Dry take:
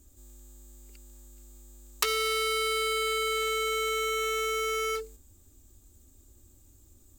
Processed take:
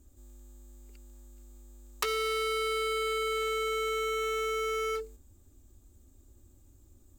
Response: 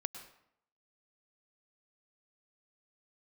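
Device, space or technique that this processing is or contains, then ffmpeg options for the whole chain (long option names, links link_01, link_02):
behind a face mask: -af "highshelf=frequency=2300:gain=-8"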